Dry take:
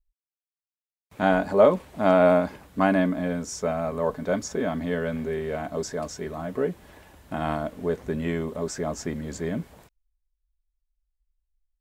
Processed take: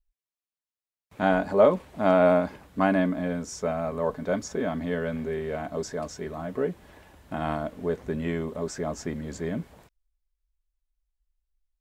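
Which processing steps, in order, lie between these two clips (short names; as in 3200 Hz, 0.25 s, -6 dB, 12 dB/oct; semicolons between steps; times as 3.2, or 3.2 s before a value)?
high shelf 6900 Hz -4.5 dB; gain -1.5 dB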